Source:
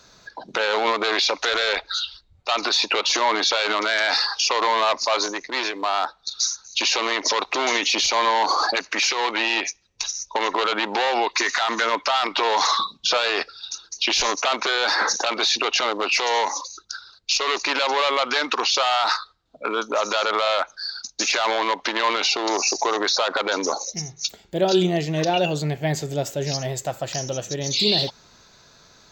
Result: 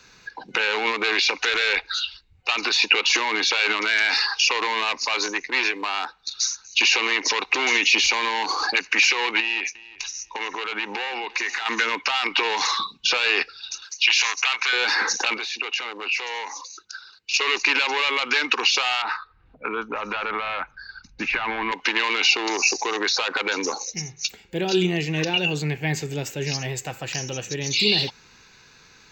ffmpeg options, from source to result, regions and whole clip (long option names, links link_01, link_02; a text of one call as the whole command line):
ffmpeg -i in.wav -filter_complex "[0:a]asettb=1/sr,asplit=3[link_01][link_02][link_03];[link_01]atrim=end=9.404[link_04];[link_02]atrim=start=9.4:end=11.66,asetpts=PTS-STARTPTS,afade=type=in:duration=0.004:curve=qsin,afade=type=out:start_time=2.256:duration=0.004:curve=qsin,acompressor=threshold=-28dB:ratio=3:attack=3.2:release=140:knee=1:detection=peak,aecho=1:1:350|700:0.1|0.02,atrim=end_sample=99666[link_05];[link_03]atrim=start=11.656[link_06];[link_04][link_05]acrossfade=duration=0.004:curve1=hsin:curve2=qsin[link_07];[link_07][link_06]acrossfade=duration=0.004:curve1=qsin:curve2=hsin,asettb=1/sr,asplit=3[link_08][link_09][link_10];[link_08]atrim=end=13.824[link_11];[link_09]atrim=start=13.82:end=14.73,asetpts=PTS-STARTPTS,afade=type=in:duration=0.004:curve=qsin,afade=type=out:start_time=0.906:duration=0.004:curve=qsin,highpass=1100,acompressor=mode=upward:threshold=-30dB:ratio=2.5:attack=3.2:release=140:knee=2.83:detection=peak[link_12];[link_10]atrim=start=14.726[link_13];[link_11][link_12]acrossfade=duration=0.004:curve1=hsin:curve2=qsin[link_14];[link_14][link_13]acrossfade=duration=0.004:curve1=qsin:curve2=hsin,asettb=1/sr,asplit=3[link_15][link_16][link_17];[link_15]atrim=end=15.374[link_18];[link_16]atrim=start=15.37:end=17.34,asetpts=PTS-STARTPTS,afade=type=in:duration=0.004:curve=qsin,afade=type=out:start_time=1.966:duration=0.004:curve=qsin,highpass=frequency=210:poles=1,acompressor=threshold=-35dB:ratio=2:attack=3.2:release=140:knee=1:detection=peak[link_19];[link_17]atrim=start=17.336[link_20];[link_18][link_19]acrossfade=duration=0.004:curve1=hsin:curve2=qsin[link_21];[link_21][link_20]acrossfade=duration=0.004:curve1=qsin:curve2=hsin,asettb=1/sr,asplit=3[link_22][link_23][link_24];[link_22]atrim=end=19.024[link_25];[link_23]atrim=start=19.02:end=21.72,asetpts=PTS-STARTPTS,afade=type=in:duration=0.004:curve=qsin,afade=type=out:start_time=2.696:duration=0.004:curve=qsin,lowpass=1800,asubboost=boost=12:cutoff=160,acompressor=mode=upward:threshold=-43dB:ratio=2.5:attack=3.2:release=140:knee=2.83:detection=peak[link_26];[link_24]atrim=start=21.716[link_27];[link_25][link_26]acrossfade=duration=0.004:curve1=hsin:curve2=qsin[link_28];[link_28][link_27]acrossfade=duration=0.004:curve1=qsin:curve2=hsin,acrossover=split=380|3000[link_29][link_30][link_31];[link_30]acompressor=threshold=-23dB:ratio=6[link_32];[link_29][link_32][link_31]amix=inputs=3:normalize=0,superequalizer=8b=0.355:11b=1.78:12b=2.82:16b=0.398,volume=-1dB" out.wav